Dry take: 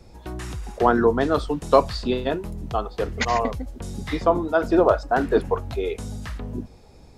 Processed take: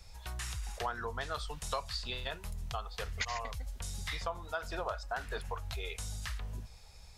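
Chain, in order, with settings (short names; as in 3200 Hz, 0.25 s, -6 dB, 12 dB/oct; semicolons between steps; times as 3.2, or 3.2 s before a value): passive tone stack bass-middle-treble 10-0-10; compressor 3:1, threshold -39 dBFS, peak gain reduction 12.5 dB; gain +3 dB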